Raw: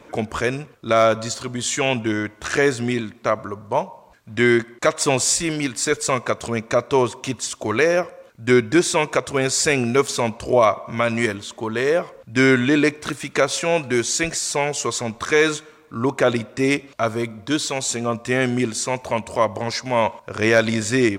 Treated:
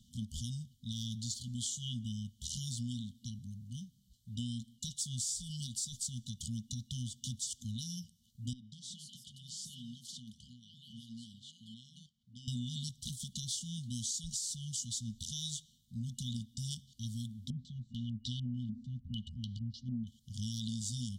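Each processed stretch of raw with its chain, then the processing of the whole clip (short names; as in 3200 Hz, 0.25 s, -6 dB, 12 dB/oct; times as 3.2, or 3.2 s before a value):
8.53–12.48 compressor 4:1, threshold -19 dBFS + band-pass 950 Hz, Q 0.74 + echoes that change speed 0.211 s, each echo +3 st, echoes 2, each echo -6 dB
17.5–20.07 low shelf 64 Hz +5.5 dB + stepped low-pass 6.7 Hz 260–4100 Hz
whole clip: FFT band-reject 250–2900 Hz; passive tone stack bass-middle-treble 6-0-2; compressor, threshold -42 dBFS; gain +7 dB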